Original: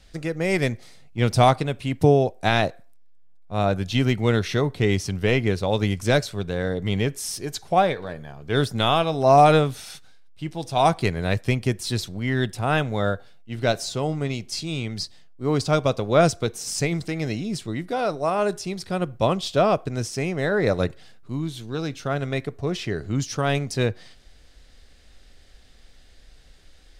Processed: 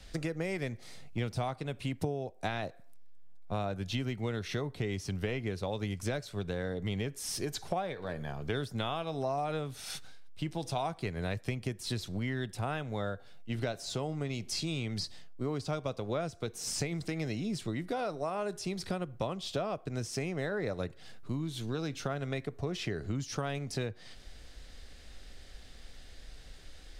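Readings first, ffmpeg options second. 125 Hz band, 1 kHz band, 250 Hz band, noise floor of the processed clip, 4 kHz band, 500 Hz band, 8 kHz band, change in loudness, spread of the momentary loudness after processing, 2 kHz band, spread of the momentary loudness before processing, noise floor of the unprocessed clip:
−11.5 dB, −16.0 dB, −11.0 dB, −52 dBFS, −10.5 dB, −13.5 dB, −8.5 dB, −13.0 dB, 16 LU, −12.5 dB, 11 LU, −50 dBFS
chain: -filter_complex "[0:a]acrossover=split=180|3400[link_01][link_02][link_03];[link_03]alimiter=level_in=3.5dB:limit=-24dB:level=0:latency=1:release=26,volume=-3.5dB[link_04];[link_01][link_02][link_04]amix=inputs=3:normalize=0,acompressor=threshold=-33dB:ratio=8,volume=1.5dB"

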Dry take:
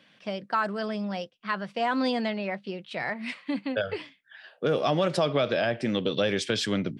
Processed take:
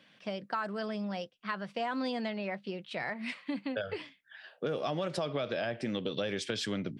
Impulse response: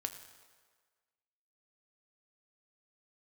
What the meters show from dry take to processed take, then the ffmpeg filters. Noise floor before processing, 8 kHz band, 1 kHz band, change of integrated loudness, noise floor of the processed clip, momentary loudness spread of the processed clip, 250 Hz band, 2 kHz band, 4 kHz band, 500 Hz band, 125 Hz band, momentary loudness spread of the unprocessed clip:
−63 dBFS, can't be measured, −7.5 dB, −7.0 dB, −65 dBFS, 6 LU, −6.5 dB, −6.5 dB, −7.0 dB, −7.5 dB, −7.5 dB, 10 LU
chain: -af "acompressor=threshold=-30dB:ratio=2.5,volume=-2.5dB"

